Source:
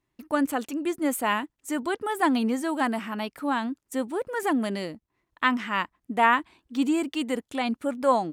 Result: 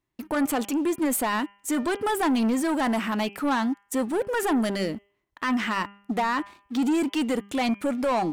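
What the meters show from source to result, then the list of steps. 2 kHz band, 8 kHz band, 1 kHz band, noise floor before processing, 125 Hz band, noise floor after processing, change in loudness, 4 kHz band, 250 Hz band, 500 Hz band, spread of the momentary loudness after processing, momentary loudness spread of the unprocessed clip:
−1.5 dB, +5.5 dB, −1.5 dB, −80 dBFS, +4.0 dB, −71 dBFS, +1.0 dB, +1.0 dB, +2.5 dB, +1.0 dB, 6 LU, 8 LU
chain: brickwall limiter −18.5 dBFS, peak gain reduction 11.5 dB
reversed playback
upward compression, threshold −41 dBFS
reversed playback
leveller curve on the samples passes 2
hum removal 200.9 Hz, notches 16

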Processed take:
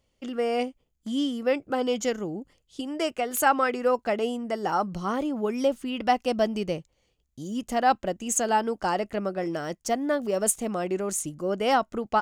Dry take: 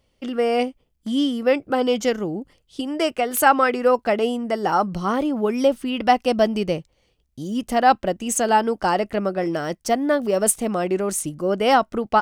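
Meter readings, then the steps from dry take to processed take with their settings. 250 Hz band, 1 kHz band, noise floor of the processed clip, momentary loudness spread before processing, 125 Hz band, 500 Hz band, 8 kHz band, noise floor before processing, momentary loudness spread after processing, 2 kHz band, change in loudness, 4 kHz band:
−6.0 dB, −6.0 dB, −73 dBFS, 9 LU, −6.0 dB, −6.0 dB, −3.5 dB, −68 dBFS, 10 LU, −6.0 dB, −6.0 dB, −6.0 dB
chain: parametric band 6,900 Hz +9 dB 0.21 octaves
level −6 dB

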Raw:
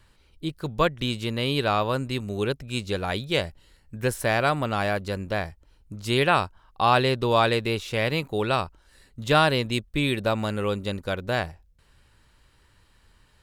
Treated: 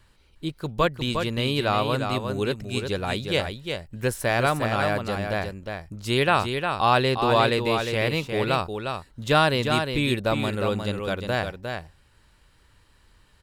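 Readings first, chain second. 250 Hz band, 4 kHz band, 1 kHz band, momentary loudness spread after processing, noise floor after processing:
+1.0 dB, +1.0 dB, +1.0 dB, 12 LU, −59 dBFS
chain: single-tap delay 356 ms −6 dB

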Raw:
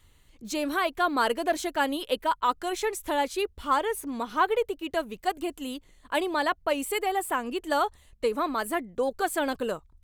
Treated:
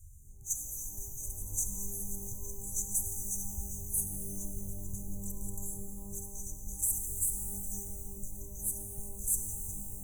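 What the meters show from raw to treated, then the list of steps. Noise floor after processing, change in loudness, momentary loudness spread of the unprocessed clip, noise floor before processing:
−46 dBFS, −7.0 dB, 6 LU, −59 dBFS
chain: tube saturation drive 27 dB, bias 0.5
echo ahead of the sound 41 ms −14 dB
brick-wall band-stop 150–5,900 Hz
reverb with rising layers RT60 3.2 s, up +12 semitones, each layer −2 dB, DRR 4.5 dB
level +9 dB

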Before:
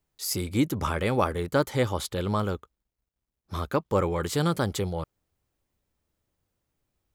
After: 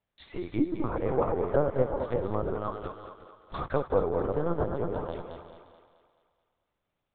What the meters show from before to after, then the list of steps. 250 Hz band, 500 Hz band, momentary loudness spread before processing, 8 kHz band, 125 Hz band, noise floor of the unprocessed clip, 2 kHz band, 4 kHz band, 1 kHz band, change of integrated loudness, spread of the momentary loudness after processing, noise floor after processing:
−3.5 dB, +0.5 dB, 9 LU, below −40 dB, −6.0 dB, −85 dBFS, −9.0 dB, below −15 dB, −3.0 dB, −2.5 dB, 15 LU, −83 dBFS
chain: feedback delay that plays each chunk backwards 180 ms, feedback 41%, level −4.5 dB
treble cut that deepens with the level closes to 790 Hz, closed at −22.5 dBFS
high-pass filter 240 Hz 12 dB per octave
linear-prediction vocoder at 8 kHz pitch kept
on a send: feedback echo with a high-pass in the loop 216 ms, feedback 52%, high-pass 320 Hz, level −8 dB

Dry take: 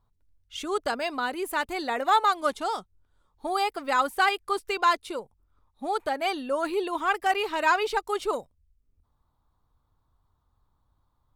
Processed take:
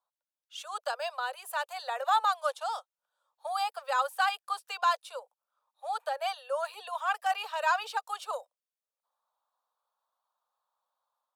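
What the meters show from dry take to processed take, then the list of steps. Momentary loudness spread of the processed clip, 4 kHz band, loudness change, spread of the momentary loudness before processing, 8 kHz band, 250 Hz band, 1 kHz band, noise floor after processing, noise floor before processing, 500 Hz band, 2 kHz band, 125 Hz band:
12 LU, −4.5 dB, −5.0 dB, 10 LU, −4.0 dB, below −40 dB, −4.0 dB, below −85 dBFS, −72 dBFS, −7.5 dB, −5.5 dB, can't be measured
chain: Butterworth high-pass 500 Hz 96 dB per octave
parametric band 2,100 Hz −13.5 dB 0.2 octaves
automatic gain control gain up to 3.5 dB
level −7.5 dB

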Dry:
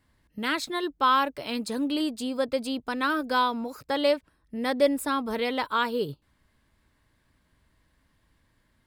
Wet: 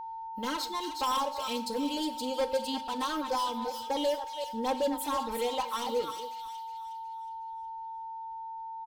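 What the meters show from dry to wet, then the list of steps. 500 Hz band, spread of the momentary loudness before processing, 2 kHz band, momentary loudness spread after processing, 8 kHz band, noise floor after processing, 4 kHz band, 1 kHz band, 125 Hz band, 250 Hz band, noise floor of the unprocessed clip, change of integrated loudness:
−4.0 dB, 8 LU, −12.0 dB, 10 LU, +1.0 dB, −41 dBFS, −3.0 dB, −3.0 dB, below −10 dB, −6.5 dB, −69 dBFS, −6.0 dB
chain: delay that plays each chunk backwards 185 ms, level −9.5 dB
octave-band graphic EQ 125/250/1,000/2,000/4,000/8,000 Hz −11/−7/+8/−7/+4/−6 dB
reverb reduction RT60 2 s
soft clipping −25 dBFS, distortion −6 dB
leveller curve on the samples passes 1
parametric band 1,400 Hz −5.5 dB 1.4 octaves
comb filter 3.8 ms, depth 95%
delay with a high-pass on its return 364 ms, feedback 42%, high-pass 2,800 Hz, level −5 dB
coupled-rooms reverb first 0.57 s, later 1.8 s, from −27 dB, DRR 10.5 dB
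steady tone 900 Hz −33 dBFS
level −4.5 dB

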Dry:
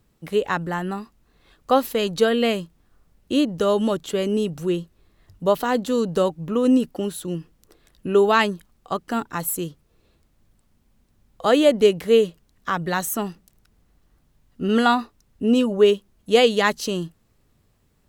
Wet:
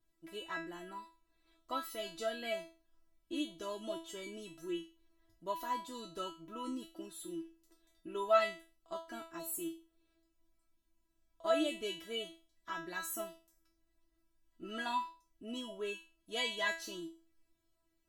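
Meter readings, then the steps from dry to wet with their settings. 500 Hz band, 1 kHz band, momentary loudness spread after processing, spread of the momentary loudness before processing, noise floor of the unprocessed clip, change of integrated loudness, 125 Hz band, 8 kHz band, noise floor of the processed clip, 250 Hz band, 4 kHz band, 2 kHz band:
−20.0 dB, −15.0 dB, 15 LU, 13 LU, −64 dBFS, −18.0 dB, −28.5 dB, −14.0 dB, −79 dBFS, −21.5 dB, −13.5 dB, −14.0 dB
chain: tuned comb filter 330 Hz, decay 0.34 s, harmonics all, mix 100%
level +1.5 dB

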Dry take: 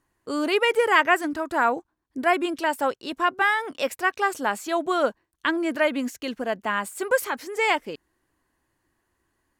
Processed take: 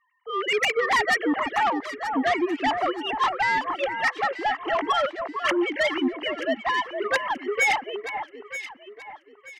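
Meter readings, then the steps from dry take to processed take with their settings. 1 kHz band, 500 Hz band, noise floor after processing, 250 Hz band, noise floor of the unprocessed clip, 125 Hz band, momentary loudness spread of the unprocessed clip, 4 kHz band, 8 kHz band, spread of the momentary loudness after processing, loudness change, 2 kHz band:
+0.5 dB, −2.0 dB, −54 dBFS, 0.0 dB, −75 dBFS, can't be measured, 9 LU, +2.0 dB, −1.5 dB, 13 LU, −0.5 dB, 0.0 dB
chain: three sine waves on the formant tracks
parametric band 2,500 Hz +4.5 dB 1.4 octaves
comb filter 1 ms, depth 67%
in parallel at −2 dB: downward compressor, threshold −27 dBFS, peak gain reduction 14.5 dB
on the sum: soft clipping −17.5 dBFS, distortion −10 dB
on a send: delay that swaps between a low-pass and a high-pass 465 ms, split 1,800 Hz, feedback 56%, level −6.5 dB

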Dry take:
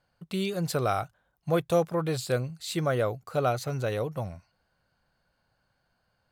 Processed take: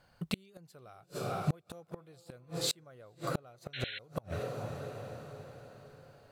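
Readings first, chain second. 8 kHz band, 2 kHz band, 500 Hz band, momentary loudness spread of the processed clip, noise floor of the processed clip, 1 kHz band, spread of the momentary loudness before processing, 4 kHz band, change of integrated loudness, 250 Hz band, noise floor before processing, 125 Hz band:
−2.5 dB, −7.5 dB, −13.0 dB, 20 LU, −66 dBFS, −11.0 dB, 9 LU, −1.5 dB, −10.0 dB, −9.0 dB, −75 dBFS, −8.0 dB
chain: feedback delay with all-pass diffusion 456 ms, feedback 48%, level −15 dB
gate with flip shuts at −23 dBFS, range −35 dB
in parallel at −0.5 dB: downward compressor, threshold −45 dBFS, peak gain reduction 15.5 dB
on the sum: sound drawn into the spectrogram noise, 0:03.73–0:03.99, 1,400–4,200 Hz −44 dBFS
level +2 dB

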